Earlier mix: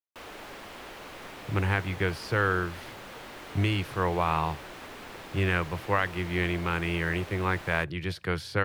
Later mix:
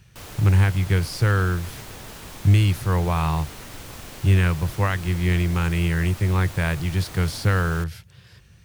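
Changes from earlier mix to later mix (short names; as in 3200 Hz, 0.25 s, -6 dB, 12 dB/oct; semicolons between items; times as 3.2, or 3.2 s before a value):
speech: entry -1.10 s; master: remove three-band isolator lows -13 dB, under 250 Hz, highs -13 dB, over 3600 Hz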